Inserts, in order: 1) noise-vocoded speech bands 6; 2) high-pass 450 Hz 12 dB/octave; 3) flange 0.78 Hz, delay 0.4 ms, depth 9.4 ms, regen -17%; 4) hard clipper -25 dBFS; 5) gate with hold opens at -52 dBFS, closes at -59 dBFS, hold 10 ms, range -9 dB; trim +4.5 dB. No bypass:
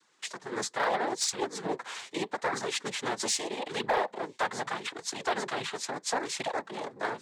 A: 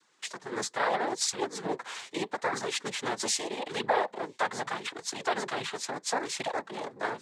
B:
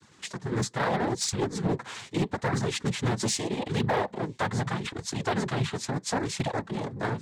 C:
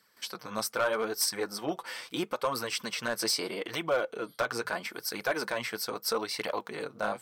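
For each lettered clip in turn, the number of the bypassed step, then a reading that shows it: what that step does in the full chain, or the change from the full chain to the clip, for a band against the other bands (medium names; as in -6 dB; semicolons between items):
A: 4, distortion -20 dB; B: 2, 125 Hz band +19.5 dB; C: 1, 1 kHz band -4.0 dB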